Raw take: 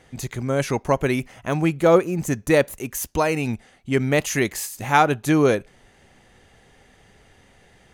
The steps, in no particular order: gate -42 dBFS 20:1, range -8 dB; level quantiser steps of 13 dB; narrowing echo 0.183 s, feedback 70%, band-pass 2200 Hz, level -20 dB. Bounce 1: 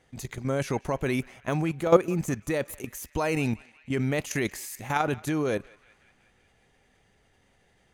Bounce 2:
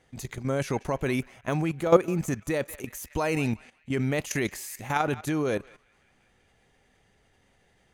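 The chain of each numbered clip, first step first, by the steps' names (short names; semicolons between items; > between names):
gate > level quantiser > narrowing echo; narrowing echo > gate > level quantiser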